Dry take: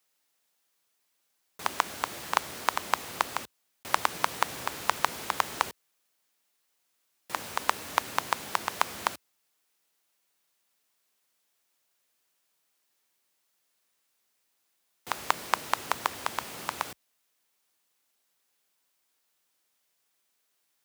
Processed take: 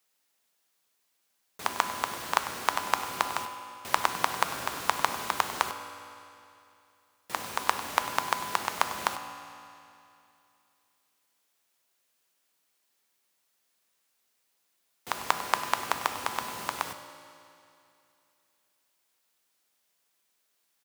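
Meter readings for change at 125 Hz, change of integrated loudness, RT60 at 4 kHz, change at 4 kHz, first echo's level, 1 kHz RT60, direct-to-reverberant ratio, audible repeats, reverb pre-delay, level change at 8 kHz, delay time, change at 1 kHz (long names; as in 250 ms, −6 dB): +0.5 dB, +0.5 dB, 2.5 s, +1.0 dB, −15.5 dB, 2.7 s, 7.0 dB, 1, 4 ms, +0.5 dB, 98 ms, +1.0 dB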